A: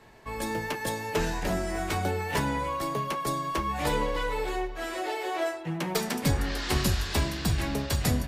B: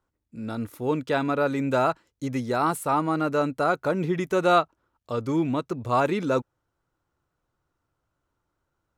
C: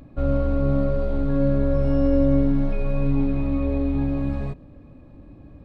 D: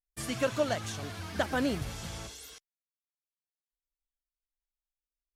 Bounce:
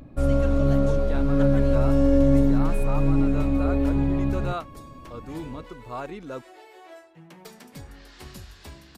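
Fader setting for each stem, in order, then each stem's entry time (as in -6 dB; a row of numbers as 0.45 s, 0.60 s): -16.5 dB, -12.0 dB, +0.5 dB, -9.5 dB; 1.50 s, 0.00 s, 0.00 s, 0.00 s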